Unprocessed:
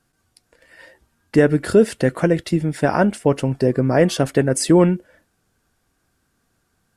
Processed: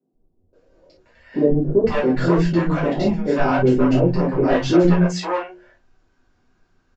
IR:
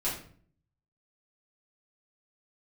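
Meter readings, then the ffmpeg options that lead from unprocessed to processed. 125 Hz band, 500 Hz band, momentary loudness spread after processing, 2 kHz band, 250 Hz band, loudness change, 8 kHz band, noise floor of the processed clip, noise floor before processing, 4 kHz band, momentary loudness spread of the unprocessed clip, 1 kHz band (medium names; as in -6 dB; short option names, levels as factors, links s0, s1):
0.0 dB, -1.0 dB, 7 LU, -1.5 dB, +0.5 dB, -0.5 dB, under -10 dB, -65 dBFS, -69 dBFS, -2.0 dB, 5 LU, +1.5 dB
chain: -filter_complex "[0:a]aresample=16000,asoftclip=type=hard:threshold=0.299,aresample=44100,aemphasis=mode=production:type=cd,asoftclip=type=tanh:threshold=0.237,lowpass=5000,highshelf=f=2000:g=-9.5,bandreject=f=60:t=h:w=6,bandreject=f=120:t=h:w=6,bandreject=f=180:t=h:w=6,bandreject=f=240:t=h:w=6,bandreject=f=300:t=h:w=6,bandreject=f=360:t=h:w=6,acrossover=split=170|570[s0][s1][s2];[s0]adelay=130[s3];[s2]adelay=530[s4];[s3][s1][s4]amix=inputs=3:normalize=0[s5];[1:a]atrim=start_sample=2205,atrim=end_sample=3087[s6];[s5][s6]afir=irnorm=-1:irlink=0"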